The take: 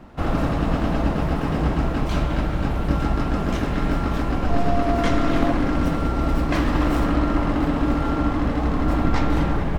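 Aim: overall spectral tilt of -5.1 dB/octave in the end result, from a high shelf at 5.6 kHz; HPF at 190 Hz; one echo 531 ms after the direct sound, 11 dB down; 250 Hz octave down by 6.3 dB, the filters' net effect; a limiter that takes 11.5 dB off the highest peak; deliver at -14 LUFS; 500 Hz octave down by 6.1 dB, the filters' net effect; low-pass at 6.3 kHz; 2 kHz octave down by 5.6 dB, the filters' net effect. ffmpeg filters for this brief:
-af "highpass=190,lowpass=6300,equalizer=f=250:t=o:g=-4,equalizer=f=500:t=o:g=-7,equalizer=f=2000:t=o:g=-7.5,highshelf=f=5600:g=5.5,alimiter=level_in=1.06:limit=0.0631:level=0:latency=1,volume=0.944,aecho=1:1:531:0.282,volume=8.91"

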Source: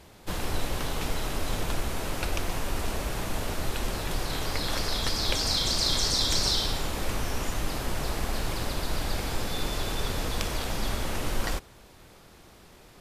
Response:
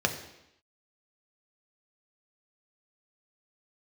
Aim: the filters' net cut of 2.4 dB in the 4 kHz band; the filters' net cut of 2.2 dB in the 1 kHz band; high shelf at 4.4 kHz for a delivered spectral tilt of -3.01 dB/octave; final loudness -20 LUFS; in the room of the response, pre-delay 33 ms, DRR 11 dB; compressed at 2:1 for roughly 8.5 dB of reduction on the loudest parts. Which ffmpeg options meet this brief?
-filter_complex "[0:a]equalizer=f=1000:t=o:g=-3,equalizer=f=4000:t=o:g=-8,highshelf=f=4400:g=8.5,acompressor=threshold=0.0126:ratio=2,asplit=2[s0][s1];[1:a]atrim=start_sample=2205,adelay=33[s2];[s1][s2]afir=irnorm=-1:irlink=0,volume=0.0841[s3];[s0][s3]amix=inputs=2:normalize=0,volume=7.08"

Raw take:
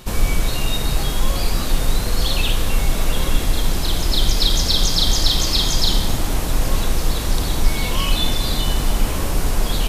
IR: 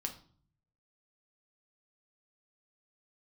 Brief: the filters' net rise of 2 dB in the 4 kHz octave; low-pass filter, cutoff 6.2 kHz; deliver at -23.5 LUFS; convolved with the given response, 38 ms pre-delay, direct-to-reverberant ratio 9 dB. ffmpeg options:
-filter_complex "[0:a]lowpass=6200,equalizer=f=4000:t=o:g=3,asplit=2[s0][s1];[1:a]atrim=start_sample=2205,adelay=38[s2];[s1][s2]afir=irnorm=-1:irlink=0,volume=0.355[s3];[s0][s3]amix=inputs=2:normalize=0,volume=0.631"

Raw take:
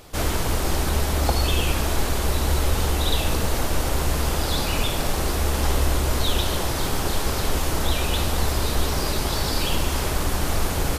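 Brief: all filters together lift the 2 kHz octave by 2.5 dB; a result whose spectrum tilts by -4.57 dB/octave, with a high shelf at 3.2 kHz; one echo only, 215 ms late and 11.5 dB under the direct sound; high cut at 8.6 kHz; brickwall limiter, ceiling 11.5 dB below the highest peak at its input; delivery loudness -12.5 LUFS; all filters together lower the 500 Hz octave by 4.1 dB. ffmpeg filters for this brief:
-af "lowpass=8600,equalizer=f=500:t=o:g=-5.5,equalizer=f=2000:t=o:g=6,highshelf=f=3200:g=-7,alimiter=limit=0.0944:level=0:latency=1,aecho=1:1:215:0.266,volume=7.94"

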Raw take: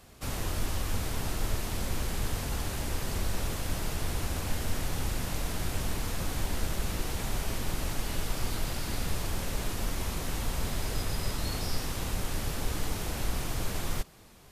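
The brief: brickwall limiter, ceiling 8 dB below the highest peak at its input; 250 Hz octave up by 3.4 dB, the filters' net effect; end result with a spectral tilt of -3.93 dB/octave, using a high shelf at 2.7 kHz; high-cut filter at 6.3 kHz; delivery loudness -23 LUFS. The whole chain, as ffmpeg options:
-af "lowpass=6300,equalizer=f=250:t=o:g=4.5,highshelf=f=2700:g=6,volume=4.22,alimiter=limit=0.266:level=0:latency=1"

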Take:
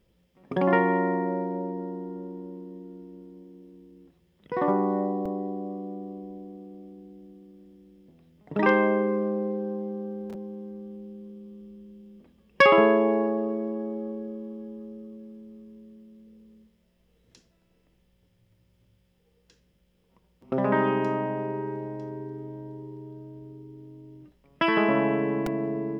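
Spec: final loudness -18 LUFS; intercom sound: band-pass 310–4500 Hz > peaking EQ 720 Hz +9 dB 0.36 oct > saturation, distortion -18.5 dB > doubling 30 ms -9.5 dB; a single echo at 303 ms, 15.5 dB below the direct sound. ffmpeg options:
-filter_complex "[0:a]highpass=310,lowpass=4500,equalizer=f=720:t=o:w=0.36:g=9,aecho=1:1:303:0.168,asoftclip=threshold=0.299,asplit=2[s0][s1];[s1]adelay=30,volume=0.335[s2];[s0][s2]amix=inputs=2:normalize=0,volume=2.37"

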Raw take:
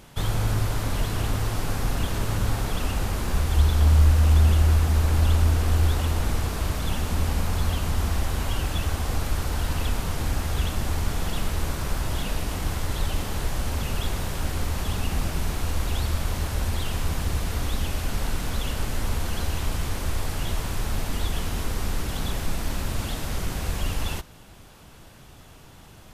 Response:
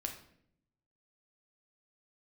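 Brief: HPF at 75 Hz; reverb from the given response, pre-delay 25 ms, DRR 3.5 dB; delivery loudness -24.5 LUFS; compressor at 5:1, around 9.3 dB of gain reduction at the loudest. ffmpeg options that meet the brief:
-filter_complex "[0:a]highpass=75,acompressor=threshold=0.0447:ratio=5,asplit=2[s0][s1];[1:a]atrim=start_sample=2205,adelay=25[s2];[s1][s2]afir=irnorm=-1:irlink=0,volume=0.708[s3];[s0][s3]amix=inputs=2:normalize=0,volume=1.88"

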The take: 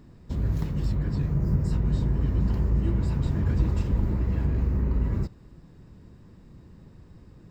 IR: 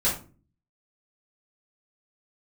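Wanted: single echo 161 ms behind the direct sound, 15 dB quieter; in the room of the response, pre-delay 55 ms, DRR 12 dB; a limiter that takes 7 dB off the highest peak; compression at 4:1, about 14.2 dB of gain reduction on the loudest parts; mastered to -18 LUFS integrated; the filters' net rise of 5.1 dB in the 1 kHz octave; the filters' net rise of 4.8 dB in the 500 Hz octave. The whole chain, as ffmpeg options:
-filter_complex "[0:a]equalizer=f=500:t=o:g=5.5,equalizer=f=1000:t=o:g=4.5,acompressor=threshold=0.0141:ratio=4,alimiter=level_in=2.82:limit=0.0631:level=0:latency=1,volume=0.355,aecho=1:1:161:0.178,asplit=2[s0][s1];[1:a]atrim=start_sample=2205,adelay=55[s2];[s1][s2]afir=irnorm=-1:irlink=0,volume=0.0708[s3];[s0][s3]amix=inputs=2:normalize=0,volume=16.8"

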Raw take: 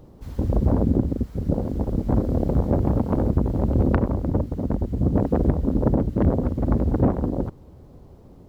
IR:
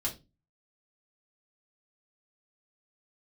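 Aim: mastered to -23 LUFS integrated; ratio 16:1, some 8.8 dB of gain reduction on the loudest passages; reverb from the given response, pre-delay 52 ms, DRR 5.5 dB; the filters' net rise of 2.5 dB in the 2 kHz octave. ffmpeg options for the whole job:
-filter_complex "[0:a]equalizer=f=2000:t=o:g=3.5,acompressor=threshold=0.0708:ratio=16,asplit=2[s0][s1];[1:a]atrim=start_sample=2205,adelay=52[s2];[s1][s2]afir=irnorm=-1:irlink=0,volume=0.376[s3];[s0][s3]amix=inputs=2:normalize=0,volume=1.78"

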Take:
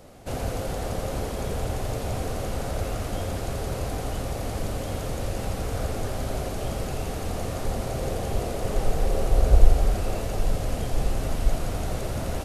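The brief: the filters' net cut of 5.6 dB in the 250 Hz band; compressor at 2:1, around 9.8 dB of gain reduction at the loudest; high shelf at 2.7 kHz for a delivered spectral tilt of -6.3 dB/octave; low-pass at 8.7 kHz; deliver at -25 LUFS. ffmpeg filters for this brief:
-af "lowpass=8700,equalizer=f=250:t=o:g=-8,highshelf=f=2700:g=-8.5,acompressor=threshold=0.0631:ratio=2,volume=2.37"

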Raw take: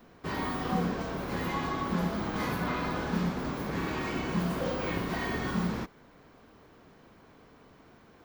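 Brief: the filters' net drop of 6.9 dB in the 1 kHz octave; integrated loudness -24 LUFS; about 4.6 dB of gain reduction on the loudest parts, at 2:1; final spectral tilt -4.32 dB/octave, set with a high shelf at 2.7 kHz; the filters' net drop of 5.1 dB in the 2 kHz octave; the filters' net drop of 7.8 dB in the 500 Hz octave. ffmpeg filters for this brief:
-af "equalizer=f=500:t=o:g=-9,equalizer=f=1000:t=o:g=-5,equalizer=f=2000:t=o:g=-5.5,highshelf=f=2700:g=3.5,acompressor=threshold=0.0178:ratio=2,volume=4.73"

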